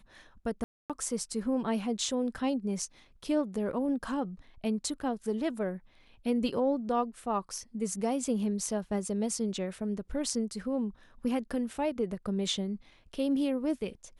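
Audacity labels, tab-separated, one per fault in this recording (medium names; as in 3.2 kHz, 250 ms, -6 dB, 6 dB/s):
0.640000	0.900000	dropout 257 ms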